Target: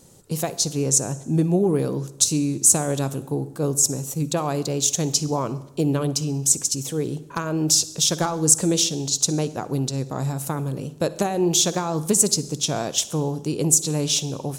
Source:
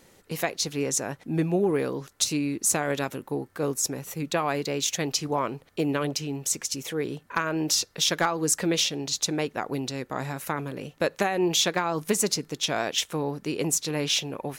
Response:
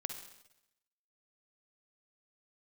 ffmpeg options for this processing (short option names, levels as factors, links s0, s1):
-filter_complex "[0:a]equalizer=f=125:t=o:w=1:g=7,equalizer=f=2000:t=o:w=1:g=-12,equalizer=f=8000:t=o:w=1:g=9,asplit=2[s0][s1];[1:a]atrim=start_sample=2205,lowshelf=f=480:g=6.5[s2];[s1][s2]afir=irnorm=-1:irlink=0,volume=0.447[s3];[s0][s3]amix=inputs=2:normalize=0,volume=0.891"